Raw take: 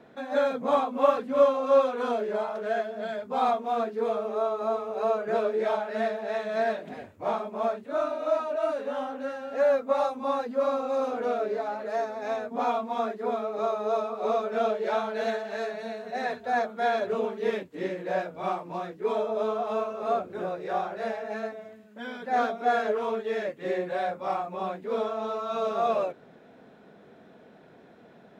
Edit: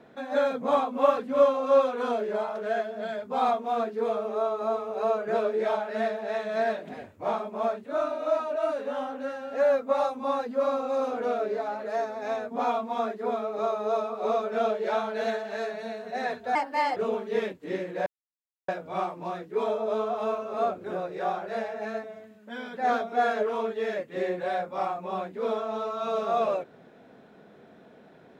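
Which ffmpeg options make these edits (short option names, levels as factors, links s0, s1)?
-filter_complex "[0:a]asplit=4[s0][s1][s2][s3];[s0]atrim=end=16.554[s4];[s1]atrim=start=16.55:end=17.07,asetpts=PTS-STARTPTS,asetrate=55566,aresample=44100[s5];[s2]atrim=start=17.066:end=18.17,asetpts=PTS-STARTPTS,afade=t=out:st=1.1:d=0.004:c=hsin,apad=pad_dur=0.62[s6];[s3]atrim=start=18.17,asetpts=PTS-STARTPTS,afade=t=in:d=0.004:c=hsin[s7];[s4][s5]acrossfade=d=0.004:c1=hsin:c2=hsin[s8];[s6][s7]concat=n=2:v=0:a=1[s9];[s8][s9]acrossfade=d=0.004:c1=hsin:c2=hsin"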